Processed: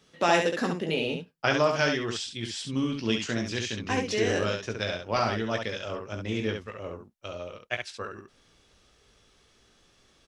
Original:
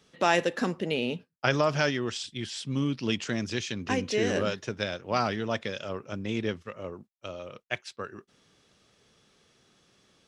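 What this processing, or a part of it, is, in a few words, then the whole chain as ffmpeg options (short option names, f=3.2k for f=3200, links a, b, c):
slapback doubling: -filter_complex "[0:a]asubboost=boost=7.5:cutoff=52,asplit=3[a][b][c];[b]adelay=18,volume=-6.5dB[d];[c]adelay=68,volume=-5dB[e];[a][d][e]amix=inputs=3:normalize=0"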